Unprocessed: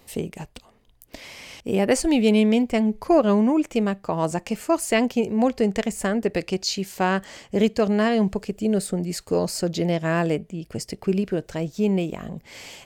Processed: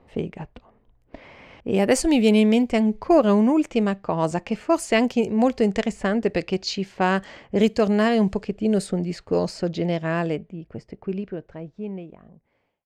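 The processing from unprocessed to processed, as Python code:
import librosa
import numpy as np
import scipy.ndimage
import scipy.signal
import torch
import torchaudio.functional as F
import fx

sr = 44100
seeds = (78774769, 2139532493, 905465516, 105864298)

y = fx.fade_out_tail(x, sr, length_s=3.77)
y = fx.env_lowpass(y, sr, base_hz=1300.0, full_db=-15.5)
y = F.gain(torch.from_numpy(y), 1.0).numpy()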